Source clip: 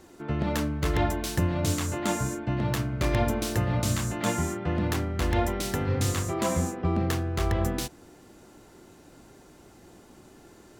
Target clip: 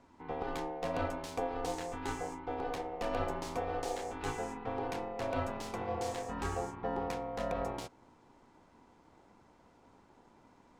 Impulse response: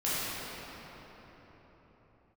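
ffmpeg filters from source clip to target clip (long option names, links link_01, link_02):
-af "aeval=exprs='val(0)*sin(2*PI*610*n/s)':channel_layout=same,adynamicsmooth=sensitivity=8:basefreq=5900,lowshelf=frequency=220:gain=6,volume=-8.5dB"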